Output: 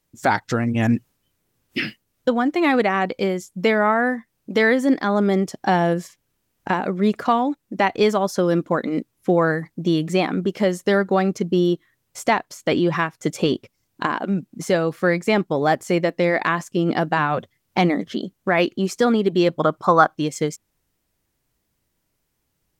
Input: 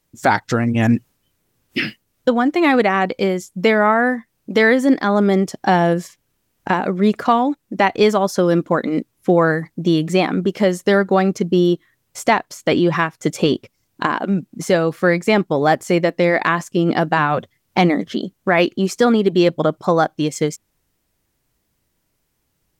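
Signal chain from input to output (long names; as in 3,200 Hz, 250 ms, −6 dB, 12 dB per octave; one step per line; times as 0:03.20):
0:19.49–0:20.14: parametric band 1,200 Hz +5.5 dB → +13.5 dB 0.89 octaves
level −3.5 dB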